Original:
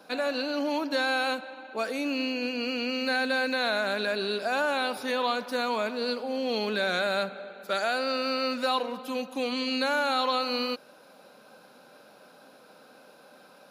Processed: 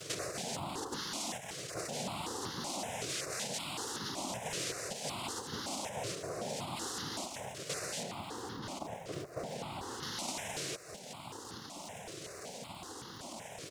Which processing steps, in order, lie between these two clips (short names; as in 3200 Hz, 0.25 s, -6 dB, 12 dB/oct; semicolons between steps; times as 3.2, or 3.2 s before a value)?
dynamic EQ 1800 Hz, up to +5 dB, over -43 dBFS, Q 1.1; limiter -20 dBFS, peak gain reduction 7.5 dB; echo 0.202 s -16 dB; noise vocoder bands 2; compressor 4:1, threshold -49 dBFS, peak gain reduction 20.5 dB; 8.03–10.03 high shelf 2800 Hz -10.5 dB; crackle 300/s -58 dBFS; step phaser 5.3 Hz 230–2400 Hz; gain +11 dB